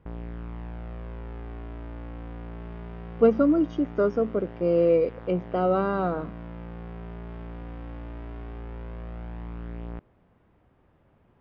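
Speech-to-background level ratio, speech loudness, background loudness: 16.5 dB, −24.0 LKFS, −40.5 LKFS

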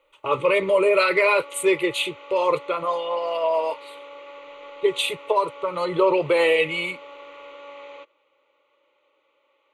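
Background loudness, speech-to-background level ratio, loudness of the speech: −42.0 LKFS, 20.0 dB, −22.0 LKFS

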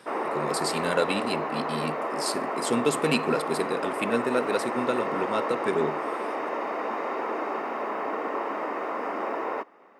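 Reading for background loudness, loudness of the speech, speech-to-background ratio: −30.5 LKFS, −29.0 LKFS, 1.5 dB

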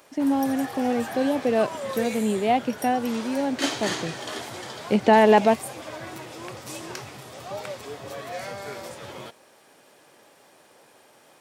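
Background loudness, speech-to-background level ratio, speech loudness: −34.5 LKFS, 11.5 dB, −23.0 LKFS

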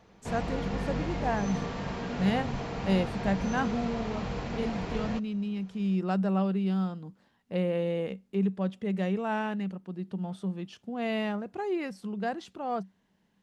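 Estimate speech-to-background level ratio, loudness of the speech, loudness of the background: 3.0 dB, −32.0 LKFS, −35.0 LKFS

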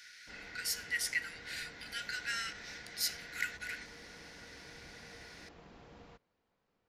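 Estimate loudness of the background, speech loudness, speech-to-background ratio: −57.0 LKFS, −38.0 LKFS, 19.0 dB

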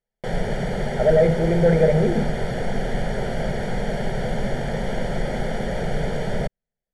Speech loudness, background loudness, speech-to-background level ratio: −19.0 LKFS, −27.0 LKFS, 8.0 dB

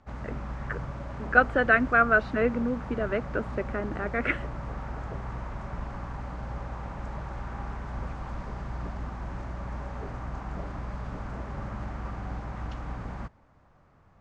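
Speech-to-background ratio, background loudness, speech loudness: 12.0 dB, −37.5 LKFS, −25.5 LKFS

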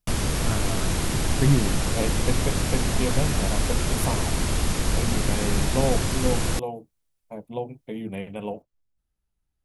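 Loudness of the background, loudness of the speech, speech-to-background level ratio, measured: −26.0 LKFS, −30.0 LKFS, −4.0 dB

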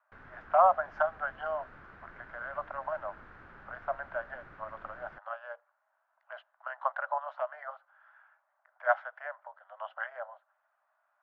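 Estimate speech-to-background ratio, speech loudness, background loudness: 19.0 dB, −34.0 LKFS, −53.0 LKFS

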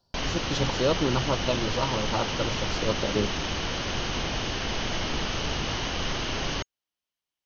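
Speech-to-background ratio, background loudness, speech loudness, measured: −0.5 dB, −29.5 LKFS, −30.0 LKFS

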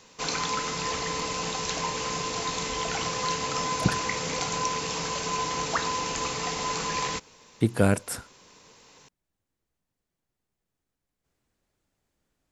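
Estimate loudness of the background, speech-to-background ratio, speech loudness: −29.0 LKFS, 1.5 dB, −27.5 LKFS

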